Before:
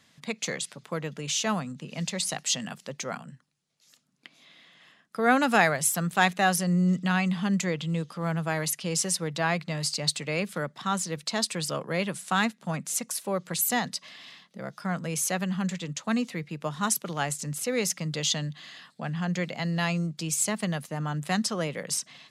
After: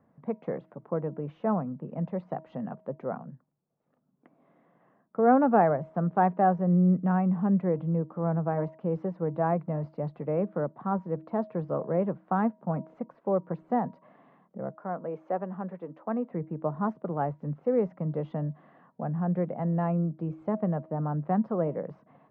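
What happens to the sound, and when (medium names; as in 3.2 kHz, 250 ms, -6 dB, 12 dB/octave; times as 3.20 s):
14.75–16.31 s: high-pass 330 Hz
whole clip: Bessel low-pass 620 Hz, order 4; bass shelf 290 Hz -9 dB; de-hum 318.1 Hz, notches 3; trim +8 dB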